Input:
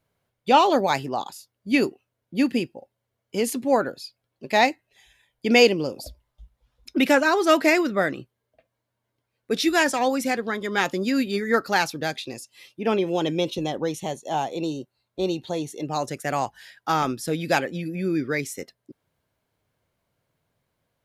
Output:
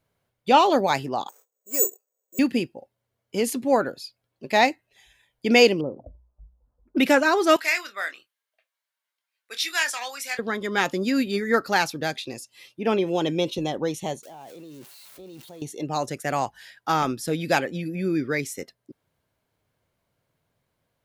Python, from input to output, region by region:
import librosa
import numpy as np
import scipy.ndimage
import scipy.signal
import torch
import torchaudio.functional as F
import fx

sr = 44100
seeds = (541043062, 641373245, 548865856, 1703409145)

y = fx.chain(x, sr, fx.median_filter(points=15),
    fx.ladder_highpass(hz=420.0, resonance_pct=60),
    fx.resample_bad(factor=6, down='filtered', up='zero_stuff'), at=(1.29, 2.39))
y = fx.chain(y, sr, fx.gaussian_blur(sigma=8.4),
    fx.hum_notches(base_hz=60, count=3),
    fx.quant_float(bits=8), at=(5.81, 6.97))
y = fx.chain(y, sr, fx.highpass(hz=1500.0, slope=12),
    fx.doubler(ms=25.0, db=-10.0), at=(7.56, 10.39))
y = fx.chain(y, sr, fx.crossing_spikes(level_db=-24.0),
    fx.level_steps(step_db=21),
    fx.high_shelf(hz=3600.0, db=-8.0), at=(14.23, 15.62))